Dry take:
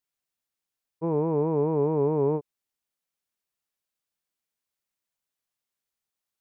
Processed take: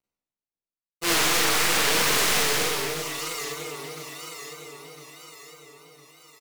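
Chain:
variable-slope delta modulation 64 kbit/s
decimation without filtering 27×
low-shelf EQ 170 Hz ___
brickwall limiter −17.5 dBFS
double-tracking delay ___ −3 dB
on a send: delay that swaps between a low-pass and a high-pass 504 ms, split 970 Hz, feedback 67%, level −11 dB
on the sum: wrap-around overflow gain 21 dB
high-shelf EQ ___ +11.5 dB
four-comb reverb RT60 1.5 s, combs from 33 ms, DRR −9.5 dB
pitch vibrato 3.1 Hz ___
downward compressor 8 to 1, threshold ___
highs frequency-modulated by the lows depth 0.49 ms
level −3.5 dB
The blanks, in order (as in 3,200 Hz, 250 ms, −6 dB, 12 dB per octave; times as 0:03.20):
−8 dB, 15 ms, 2,000 Hz, 81 cents, −14 dBFS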